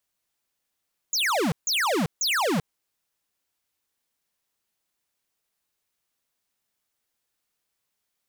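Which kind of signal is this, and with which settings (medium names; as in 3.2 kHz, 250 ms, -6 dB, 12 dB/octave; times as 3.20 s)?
burst of laser zaps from 7.3 kHz, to 140 Hz, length 0.39 s square, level -23.5 dB, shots 3, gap 0.15 s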